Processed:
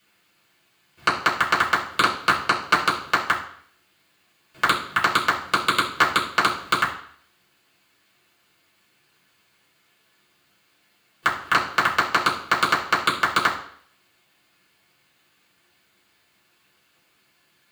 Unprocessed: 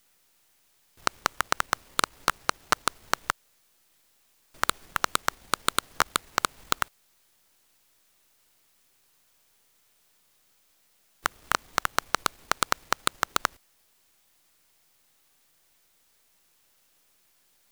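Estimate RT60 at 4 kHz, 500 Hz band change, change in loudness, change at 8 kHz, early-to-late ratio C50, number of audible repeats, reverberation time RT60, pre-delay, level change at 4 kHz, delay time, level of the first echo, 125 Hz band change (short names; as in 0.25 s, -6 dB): 0.60 s, +6.0 dB, +7.0 dB, -3.0 dB, 8.5 dB, none, 0.60 s, 3 ms, +6.0 dB, none, none, +8.5 dB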